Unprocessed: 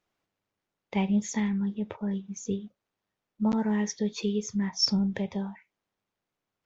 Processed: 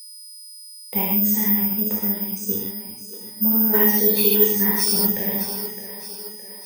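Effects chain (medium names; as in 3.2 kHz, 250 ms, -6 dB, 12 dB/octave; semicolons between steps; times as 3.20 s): gated-style reverb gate 180 ms flat, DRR -5.5 dB; peak limiter -16.5 dBFS, peak gain reduction 9.5 dB; time-frequency box 3.75–5.09 s, 270–5200 Hz +8 dB; two-band feedback delay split 310 Hz, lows 357 ms, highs 614 ms, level -11.5 dB; whistle 5 kHz -41 dBFS; careless resampling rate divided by 3×, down filtered, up zero stuff; trim -1.5 dB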